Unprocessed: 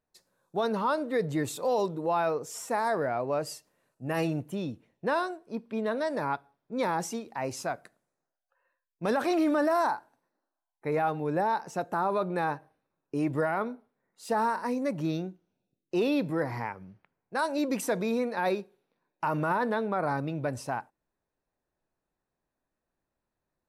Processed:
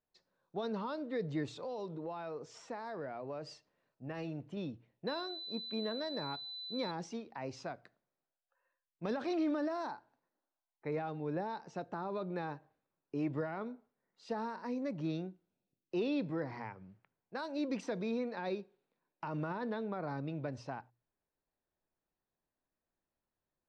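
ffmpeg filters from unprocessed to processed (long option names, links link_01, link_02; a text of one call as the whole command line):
ffmpeg -i in.wav -filter_complex "[0:a]asettb=1/sr,asplit=3[link_01][link_02][link_03];[link_01]atrim=end=1.484[link_04];[link_02]atrim=start=1.48:end=4.57,asetpts=PTS-STARTPTS,afade=type=in:duration=0.004:curve=qsin,afade=type=out:start_time=3.086:duration=0.004:curve=qsin,acompressor=threshold=-33dB:ratio=2:attack=3.2:release=140:knee=1:detection=peak[link_05];[link_03]atrim=start=4.566[link_06];[link_04][link_05]acrossfade=duration=0.004:curve1=hsin:curve2=qsin[link_07];[link_07][link_06]acrossfade=duration=0.004:curve1=qsin:curve2=hsin,asettb=1/sr,asplit=3[link_08][link_09][link_10];[link_08]atrim=end=5.074[link_11];[link_09]atrim=start=5.07:end=6.91,asetpts=PTS-STARTPTS,afade=type=in:duration=0.004:curve=qsin,afade=type=out:start_time=1.836:duration=0.004:curve=qsin,aeval=exprs='val(0)+0.0178*sin(2*PI*4000*n/s)':channel_layout=same[link_12];[link_10]atrim=start=6.906[link_13];[link_11][link_12]acrossfade=duration=0.004:curve1=hsin:curve2=qsin[link_14];[link_14][link_13]acrossfade=duration=0.004:curve1=qsin:curve2=hsin,lowpass=frequency=5100:width=0.5412,lowpass=frequency=5100:width=1.3066,bandreject=frequency=60:width_type=h:width=6,bandreject=frequency=120:width_type=h:width=6,acrossover=split=460|3000[link_15][link_16][link_17];[link_16]acompressor=threshold=-38dB:ratio=2.5[link_18];[link_15][link_18][link_17]amix=inputs=3:normalize=0,volume=-6.5dB" out.wav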